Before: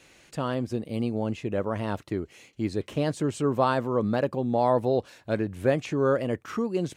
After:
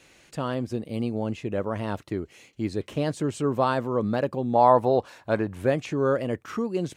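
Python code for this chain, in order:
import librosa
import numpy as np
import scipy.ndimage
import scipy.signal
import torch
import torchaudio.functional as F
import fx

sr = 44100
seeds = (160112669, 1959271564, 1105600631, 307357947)

y = fx.peak_eq(x, sr, hz=990.0, db=9.0, octaves=1.3, at=(4.55, 5.62))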